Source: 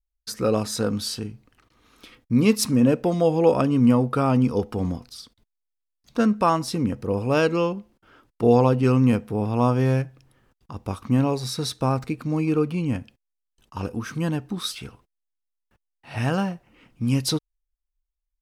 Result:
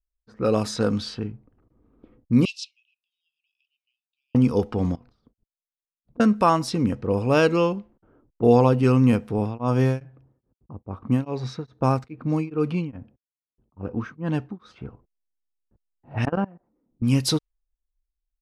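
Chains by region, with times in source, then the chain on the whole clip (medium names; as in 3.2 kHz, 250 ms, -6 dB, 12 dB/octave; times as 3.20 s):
2.45–4.35 s: steep high-pass 2.6 kHz 96 dB/octave + distance through air 100 m
4.95–6.20 s: expander -54 dBFS + compression 10:1, threshold -45 dBFS
9.38–14.79 s: high-pass 48 Hz + dynamic bell 6.4 kHz, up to +7 dB, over -52 dBFS, Q 4.3 + tremolo of two beating tones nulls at 2.4 Hz
16.25–17.02 s: low-pass 1.5 kHz + resonant low shelf 170 Hz -7.5 dB, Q 1.5 + level held to a coarse grid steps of 24 dB
whole clip: level-controlled noise filter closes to 410 Hz, open at -19.5 dBFS; treble shelf 12 kHz -4.5 dB; level rider gain up to 4.5 dB; trim -2.5 dB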